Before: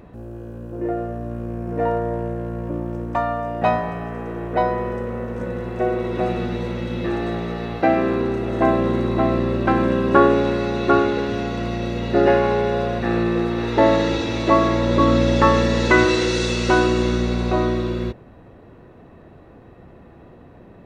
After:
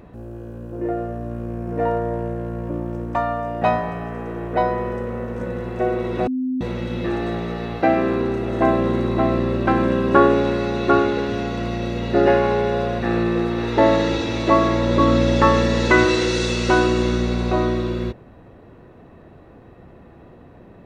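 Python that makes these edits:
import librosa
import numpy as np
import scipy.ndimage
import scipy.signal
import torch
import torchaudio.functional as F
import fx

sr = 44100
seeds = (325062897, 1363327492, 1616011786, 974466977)

y = fx.edit(x, sr, fx.bleep(start_s=6.27, length_s=0.34, hz=257.0, db=-20.0), tone=tone)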